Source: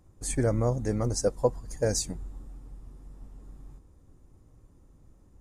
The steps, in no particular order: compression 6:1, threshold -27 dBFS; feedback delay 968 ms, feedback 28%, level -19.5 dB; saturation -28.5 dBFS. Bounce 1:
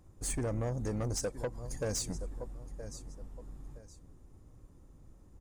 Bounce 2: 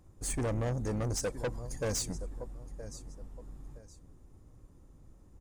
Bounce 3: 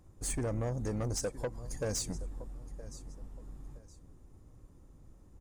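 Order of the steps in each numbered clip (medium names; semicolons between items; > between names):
feedback delay > compression > saturation; feedback delay > saturation > compression; compression > feedback delay > saturation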